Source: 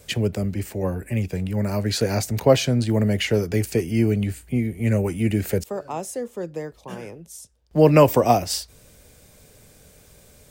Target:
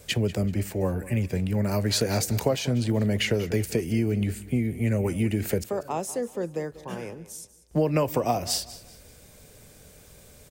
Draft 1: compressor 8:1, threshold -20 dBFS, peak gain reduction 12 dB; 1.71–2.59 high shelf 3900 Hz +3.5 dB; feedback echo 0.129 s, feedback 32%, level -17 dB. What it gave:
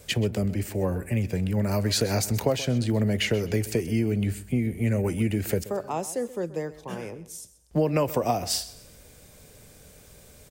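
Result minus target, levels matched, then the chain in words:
echo 62 ms early
compressor 8:1, threshold -20 dBFS, peak gain reduction 12 dB; 1.71–2.59 high shelf 3900 Hz +3.5 dB; feedback echo 0.191 s, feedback 32%, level -17 dB

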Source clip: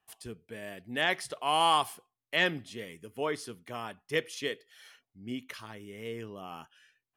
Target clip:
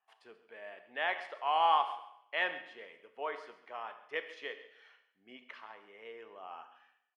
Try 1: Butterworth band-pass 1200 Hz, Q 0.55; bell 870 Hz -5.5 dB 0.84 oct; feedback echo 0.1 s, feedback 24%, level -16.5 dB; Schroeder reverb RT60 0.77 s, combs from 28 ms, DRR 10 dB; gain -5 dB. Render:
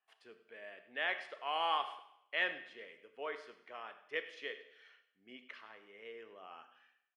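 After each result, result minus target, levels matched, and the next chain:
echo 36 ms early; 1000 Hz band -2.5 dB
Butterworth band-pass 1200 Hz, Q 0.55; bell 870 Hz -5.5 dB 0.84 oct; feedback echo 0.136 s, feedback 24%, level -16.5 dB; Schroeder reverb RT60 0.77 s, combs from 28 ms, DRR 10 dB; gain -5 dB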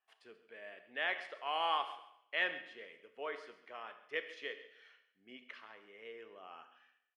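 1000 Hz band -3.0 dB
Butterworth band-pass 1200 Hz, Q 0.55; bell 870 Hz +4 dB 0.84 oct; feedback echo 0.136 s, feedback 24%, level -16.5 dB; Schroeder reverb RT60 0.77 s, combs from 28 ms, DRR 10 dB; gain -5 dB

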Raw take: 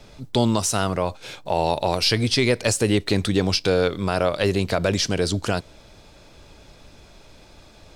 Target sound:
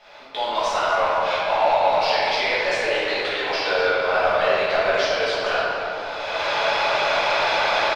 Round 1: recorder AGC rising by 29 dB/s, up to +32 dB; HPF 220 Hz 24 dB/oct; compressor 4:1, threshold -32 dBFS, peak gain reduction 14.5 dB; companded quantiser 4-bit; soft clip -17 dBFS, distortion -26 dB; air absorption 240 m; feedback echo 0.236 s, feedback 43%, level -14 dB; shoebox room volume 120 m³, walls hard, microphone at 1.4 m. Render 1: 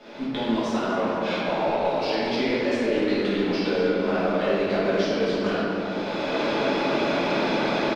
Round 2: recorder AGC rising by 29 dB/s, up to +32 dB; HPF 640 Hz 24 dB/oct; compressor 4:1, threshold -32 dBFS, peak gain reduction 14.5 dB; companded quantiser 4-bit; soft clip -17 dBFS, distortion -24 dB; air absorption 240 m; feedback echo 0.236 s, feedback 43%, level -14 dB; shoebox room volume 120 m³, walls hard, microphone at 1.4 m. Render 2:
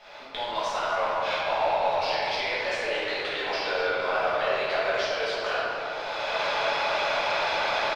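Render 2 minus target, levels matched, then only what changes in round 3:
compressor: peak gain reduction +8.5 dB
change: compressor 4:1, threshold -21 dBFS, peak gain reduction 6.5 dB

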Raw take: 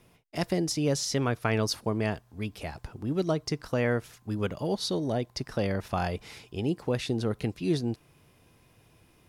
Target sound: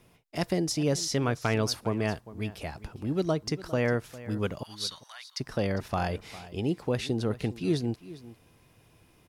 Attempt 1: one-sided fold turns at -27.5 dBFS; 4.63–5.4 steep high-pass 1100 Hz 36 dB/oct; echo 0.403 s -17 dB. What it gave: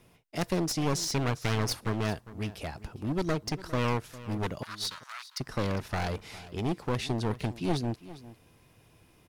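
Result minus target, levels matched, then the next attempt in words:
one-sided fold: distortion +28 dB
one-sided fold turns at -16.5 dBFS; 4.63–5.4 steep high-pass 1100 Hz 36 dB/oct; echo 0.403 s -17 dB

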